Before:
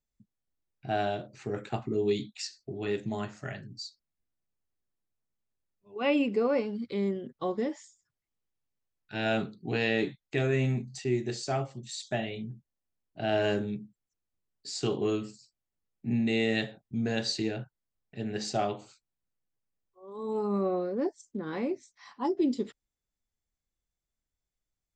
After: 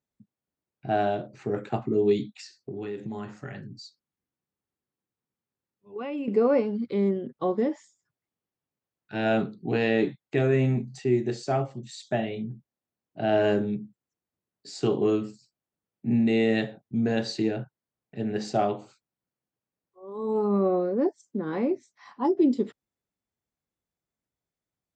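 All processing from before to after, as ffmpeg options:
-filter_complex "[0:a]asettb=1/sr,asplit=3[s0][s1][s2];[s0]atrim=end=2.344[s3];[s1]atrim=start=2.34:end=6.28,asetpts=PTS-STARTPTS,afade=t=in:d=0.004:c=qsin,afade=t=out:st=3.936:d=0.004:c=qsin,acompressor=threshold=0.0158:ratio=4:attack=3.2:release=140:knee=1:detection=peak,bandreject=f=640:w=5.9[s4];[s2]atrim=start=6.276[s5];[s3][s4]acrossfade=d=0.004:c1=hsin:c2=qsin[s6];[s6][s5]acrossfade=d=0.004:c1=qsin:c2=hsin,highpass=120,highshelf=f=2100:g=-11.5,volume=2"

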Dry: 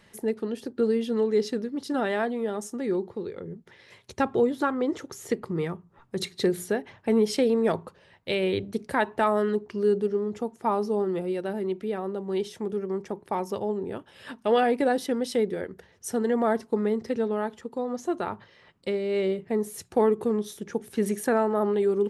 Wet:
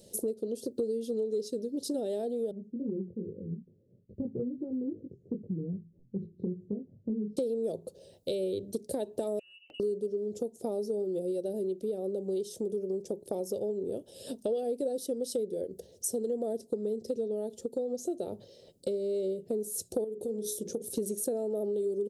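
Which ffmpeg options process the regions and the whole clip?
-filter_complex "[0:a]asettb=1/sr,asplit=3[s0][s1][s2];[s0]atrim=end=2.514[s3];[s1]atrim=start=2.51:end=7.37,asetpts=PTS-STARTPTS,afade=t=in:d=0.004:c=qsin,afade=t=out:st=4.856:d=0.004:c=qsin,flanger=delay=19:depth=4.1:speed=2.4,lowpass=f=190:t=q:w=1.9[s4];[s2]atrim=start=7.366[s5];[s3][s4]acrossfade=d=0.004:c1=hsin:c2=qsin[s6];[s6][s5]acrossfade=d=0.004:c1=qsin:c2=hsin,asettb=1/sr,asplit=3[s7][s8][s9];[s7]atrim=end=9.394[s10];[s8]atrim=start=9.39:end=9.8,asetpts=PTS-STARTPTS,afade=t=in:d=0.004:c=qsin,afade=t=out:st=0.406:d=0.004:c=qsin,lowpass=f=2600:t=q:w=0.5098,lowpass=f=2600:t=q:w=0.6013,lowpass=f=2600:t=q:w=0.9,lowpass=f=2600:t=q:w=2.563,afreqshift=-3100,acompressor=threshold=0.0141:ratio=10:attack=3.2:release=140:knee=1:detection=peak[s11];[s9]atrim=start=9.796[s12];[s10][s11]acrossfade=d=0.004:c1=hsin:c2=qsin[s13];[s13][s12]acrossfade=d=0.004:c1=qsin:c2=hsin,asettb=1/sr,asplit=3[s14][s15][s16];[s14]atrim=end=20.044[s17];[s15]atrim=start=20.04:end=20.82,asetpts=PTS-STARTPTS,afade=t=in:d=0.004:c=qsin,afade=t=out:st=0.776:d=0.004:c=qsin,bandreject=f=60:t=h:w=6,bandreject=f=120:t=h:w=6,bandreject=f=180:t=h:w=6,bandreject=f=240:t=h:w=6,bandreject=f=300:t=h:w=6,bandreject=f=360:t=h:w=6,bandreject=f=420:t=h:w=6,bandreject=f=480:t=h:w=6,bandreject=f=540:t=h:w=6,acompressor=threshold=0.02:ratio=2:attack=3.2:release=140:knee=1:detection=peak[s18];[s16]atrim=start=20.816[s19];[s17][s18]acrossfade=d=0.004:c1=hsin:c2=qsin[s20];[s20][s19]acrossfade=d=0.004:c1=qsin:c2=hsin,firequalizer=gain_entry='entry(140,0);entry(540,10);entry(1000,-22);entry(2000,-22);entry(3100,3);entry(8400,12)':delay=0.05:min_phase=1,acompressor=threshold=0.0282:ratio=5,equalizer=f=3100:t=o:w=0.42:g=-8.5"

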